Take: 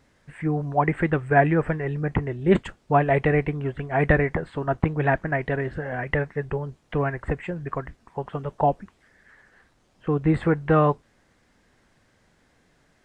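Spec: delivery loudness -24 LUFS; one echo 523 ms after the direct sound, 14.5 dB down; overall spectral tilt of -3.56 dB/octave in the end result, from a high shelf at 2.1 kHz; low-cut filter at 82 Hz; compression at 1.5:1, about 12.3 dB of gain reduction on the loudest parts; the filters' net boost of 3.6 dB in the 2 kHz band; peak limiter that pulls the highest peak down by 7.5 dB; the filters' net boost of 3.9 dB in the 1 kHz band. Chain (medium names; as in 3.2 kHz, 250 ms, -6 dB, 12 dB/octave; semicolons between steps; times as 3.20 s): high-pass 82 Hz; peaking EQ 1 kHz +6 dB; peaking EQ 2 kHz +5.5 dB; treble shelf 2.1 kHz -6.5 dB; compression 1.5:1, threshold -46 dBFS; peak limiter -21.5 dBFS; delay 523 ms -14.5 dB; trim +11 dB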